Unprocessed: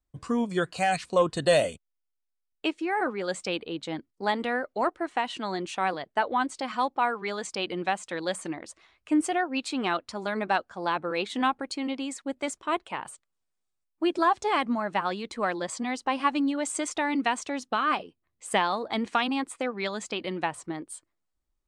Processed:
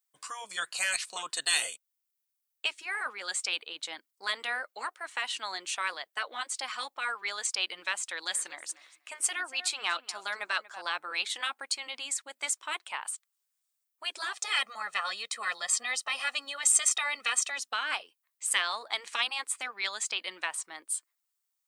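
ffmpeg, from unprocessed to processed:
-filter_complex "[0:a]asettb=1/sr,asplit=3[s0][s1][s2];[s0]atrim=end=8.024[s3];[s1]atrim=start=8.02:end=10.82,asetpts=PTS-STARTPTS,afade=t=in:d=0.004:c=qsin,afade=t=out:st=2.796:d=0.004:c=qsin,asplit=2[s4][s5];[s5]adelay=237,lowpass=f=4500:p=1,volume=0.141,asplit=2[s6][s7];[s7]adelay=237,lowpass=f=4500:p=1,volume=0.15[s8];[s4][s6][s8]amix=inputs=3:normalize=0,atrim=end_sample=123480[s9];[s2]atrim=start=10.816[s10];[s3][s9]acrossfade=d=0.004:c1=hsin:c2=qsin[s11];[s11][s10]acrossfade=d=0.004:c1=qsin:c2=hsin,asettb=1/sr,asplit=3[s12][s13][s14];[s12]atrim=end=14.334[s15];[s13]atrim=start=14.33:end=17.58,asetpts=PTS-STARTPTS,afade=t=in:d=0.004:c=qsin,afade=t=out:st=3.246:d=0.004:c=qsin,aecho=1:1:1.6:0.95,atrim=end_sample=143325[s16];[s14]atrim=start=17.576[s17];[s15][s16]acrossfade=d=0.004:c1=hsin:c2=qsin[s18];[s18][s17]acrossfade=d=0.004:c1=qsin:c2=hsin,afftfilt=real='re*lt(hypot(re,im),0.316)':imag='im*lt(hypot(re,im),0.316)':win_size=1024:overlap=0.75,highpass=1100,aemphasis=mode=production:type=50kf"

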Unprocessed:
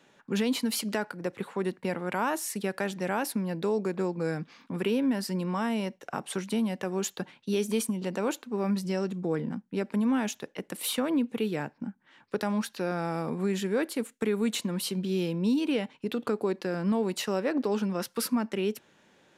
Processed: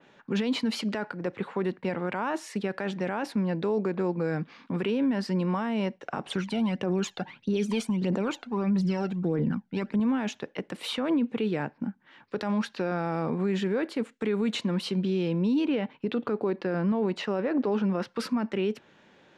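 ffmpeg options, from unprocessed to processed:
-filter_complex "[0:a]asettb=1/sr,asplit=3[s0][s1][s2];[s0]atrim=end=6.264[s3];[s1]atrim=start=6.26:end=10,asetpts=PTS-STARTPTS,afade=t=in:d=0.004:c=qsin,afade=t=out:st=3.736:d=0.004:c=qsin,aphaser=in_gain=1:out_gain=1:delay=1.5:decay=0.62:speed=1.6:type=triangular[s4];[s2]atrim=start=9.996[s5];[s3][s4]acrossfade=d=0.004:c1=hsin:c2=qsin[s6];[s6][s5]acrossfade=d=0.004:c1=qsin:c2=hsin,asettb=1/sr,asplit=3[s7][s8][s9];[s7]atrim=end=15.654[s10];[s8]atrim=start=15.65:end=18.18,asetpts=PTS-STARTPTS,afade=t=in:d=0.004:c=qsin,afade=t=out:st=2.526:d=0.004:c=qsin,aemphasis=mode=reproduction:type=cd[s11];[s9]atrim=start=18.176[s12];[s10][s11]acrossfade=d=0.004:c1=hsin:c2=qsin[s13];[s13][s12]acrossfade=d=0.004:c1=qsin:c2=hsin,lowpass=4400,alimiter=limit=0.0668:level=0:latency=1:release=14,adynamicequalizer=threshold=0.00251:dfrequency=3100:dqfactor=0.7:tfrequency=3100:tqfactor=0.7:attack=5:release=100:ratio=0.375:range=2:mode=cutabove:tftype=highshelf,volume=1.58"

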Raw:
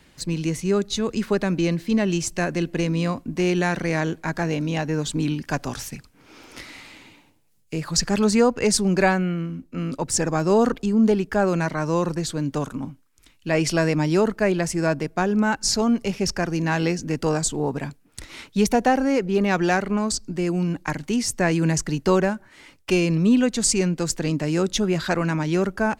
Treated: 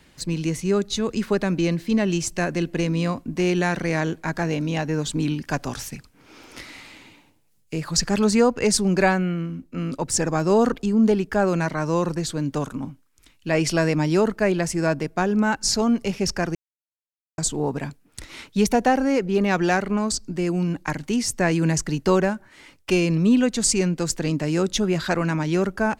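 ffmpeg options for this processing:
-filter_complex "[0:a]asplit=3[s0][s1][s2];[s0]atrim=end=16.55,asetpts=PTS-STARTPTS,afade=t=out:st=16.546:d=0.004:c=hsin[s3];[s1]atrim=start=16.55:end=17.38,asetpts=PTS-STARTPTS,volume=0[s4];[s2]atrim=start=17.38,asetpts=PTS-STARTPTS,afade=t=in:d=0.004:c=hsin[s5];[s3][s4][s5]concat=n=3:v=0:a=1"

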